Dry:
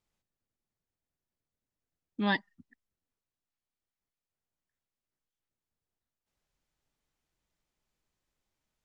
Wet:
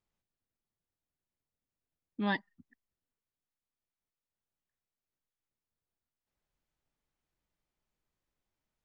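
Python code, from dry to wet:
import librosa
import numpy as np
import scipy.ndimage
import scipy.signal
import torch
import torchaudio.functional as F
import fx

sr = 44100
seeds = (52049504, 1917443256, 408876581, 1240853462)

y = fx.high_shelf(x, sr, hz=3700.0, db=-7.0)
y = y * librosa.db_to_amplitude(-2.5)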